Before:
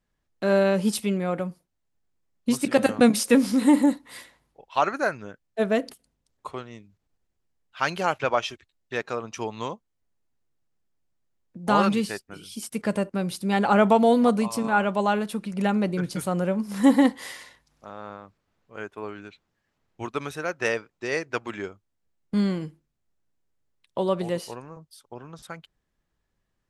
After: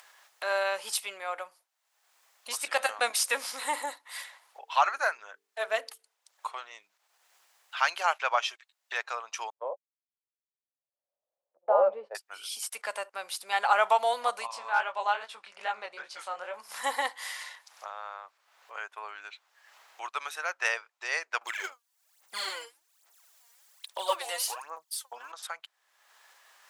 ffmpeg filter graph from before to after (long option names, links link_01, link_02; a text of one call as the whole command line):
ffmpeg -i in.wav -filter_complex "[0:a]asettb=1/sr,asplit=3[link_01][link_02][link_03];[link_01]atrim=end=4.084[link_04];[link_02]atrim=start=4.08:end=6.72,asetpts=PTS-STARTPTS,afade=type=in:duration=0.004:curve=qsin,afade=type=out:start_time=2.636:duration=0.004:curve=qsin,aphaser=in_gain=1:out_gain=1:delay=3.8:decay=0.27:speed=1.8:type=triangular,bandreject=frequency=50:width_type=h:width=6,bandreject=frequency=100:width_type=h:width=6,bandreject=frequency=150:width_type=h:width=6,bandreject=frequency=200:width_type=h:width=6,bandreject=frequency=250:width_type=h:width=6,bandreject=frequency=300:width_type=h:width=6,bandreject=frequency=350:width_type=h:width=6,bandreject=frequency=400:width_type=h:width=6,bandreject=frequency=450:width_type=h:width=6[link_05];[link_03]atrim=start=6.716[link_06];[link_04][link_05]acrossfade=duration=0.004:curve1=hsin:curve2=qsin[link_07];[link_07][link_06]acrossfade=duration=0.004:curve1=qsin:curve2=hsin,asettb=1/sr,asplit=3[link_08][link_09][link_10];[link_08]atrim=end=9.504[link_11];[link_09]atrim=start=9.5:end=12.15,asetpts=PTS-STARTPTS,afade=type=in:duration=0.004:curve=qsin,afade=type=out:start_time=2.646:duration=0.004:curve=qsin,agate=range=-52dB:threshold=-34dB:ratio=16:release=100:detection=peak,lowpass=frequency=560:width_type=q:width=6.9,asplit=2[link_12][link_13];[link_13]adelay=14,volume=-10.5dB[link_14];[link_12][link_14]amix=inputs=2:normalize=0,atrim=end_sample=116865[link_15];[link_10]atrim=start=12.146[link_16];[link_11][link_15]acrossfade=duration=0.004:curve1=hsin:curve2=qsin[link_17];[link_17][link_16]acrossfade=duration=0.004:curve1=qsin:curve2=hsin,asettb=1/sr,asplit=3[link_18][link_19][link_20];[link_18]atrim=end=14.474[link_21];[link_19]atrim=start=14.47:end=16.54,asetpts=PTS-STARTPTS,afade=type=in:duration=0.004:curve=qsin,afade=type=out:start_time=2.066:duration=0.004:curve=qsin,lowpass=5600,asoftclip=type=hard:threshold=-12dB,flanger=delay=17:depth=7.6:speed=2.4[link_22];[link_20]atrim=start=16.536[link_23];[link_21][link_22]acrossfade=duration=0.004:curve1=hsin:curve2=qsin[link_24];[link_24][link_23]acrossfade=duration=0.004:curve1=qsin:curve2=hsin,asettb=1/sr,asplit=3[link_25][link_26][link_27];[link_25]atrim=end=21.414[link_28];[link_26]atrim=start=21.41:end=25.32,asetpts=PTS-STARTPTS,afade=type=in:duration=0.004:curve=qsin,afade=type=out:start_time=3.906:duration=0.004:curve=qsin,aphaser=in_gain=1:out_gain=1:delay=4.3:decay=0.72:speed=1.2:type=sinusoidal,highshelf=frequency=4600:gain=11.5[link_29];[link_27]atrim=start=25.316[link_30];[link_28][link_29]acrossfade=duration=0.004:curve1=hsin:curve2=qsin[link_31];[link_31][link_30]acrossfade=duration=0.004:curve1=qsin:curve2=hsin,acompressor=mode=upward:threshold=-29dB:ratio=2.5,highpass=frequency=750:width=0.5412,highpass=frequency=750:width=1.3066" out.wav